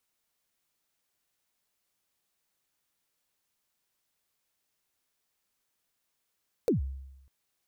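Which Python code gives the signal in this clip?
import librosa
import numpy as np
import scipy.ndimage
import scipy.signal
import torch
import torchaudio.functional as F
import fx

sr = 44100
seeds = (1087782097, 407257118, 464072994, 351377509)

y = fx.drum_kick(sr, seeds[0], length_s=0.6, level_db=-20, start_hz=530.0, end_hz=67.0, sweep_ms=127.0, decay_s=0.94, click=True)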